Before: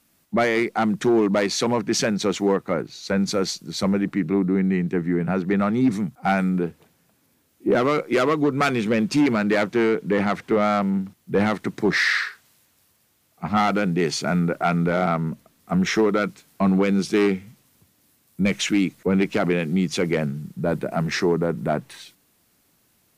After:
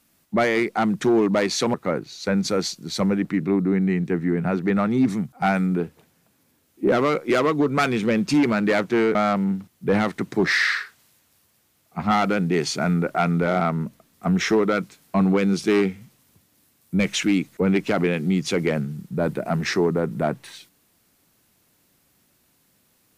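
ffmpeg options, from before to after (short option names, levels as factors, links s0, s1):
-filter_complex "[0:a]asplit=3[s0][s1][s2];[s0]atrim=end=1.742[s3];[s1]atrim=start=2.568:end=9.982[s4];[s2]atrim=start=10.608[s5];[s3][s4]acrossfade=d=0.004:c1=hsin:c2=hsin[s6];[s6][s5]acrossfade=d=0.004:c1=hsin:c2=hsin"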